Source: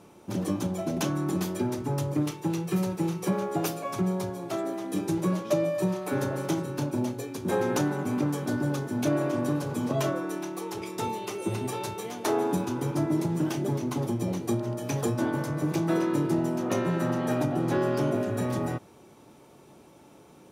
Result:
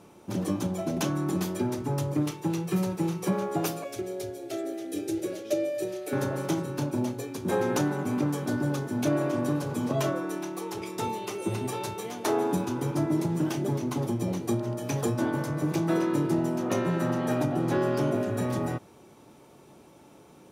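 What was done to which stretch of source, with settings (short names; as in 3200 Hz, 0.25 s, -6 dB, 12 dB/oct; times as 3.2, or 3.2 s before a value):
3.84–6.13 fixed phaser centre 420 Hz, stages 4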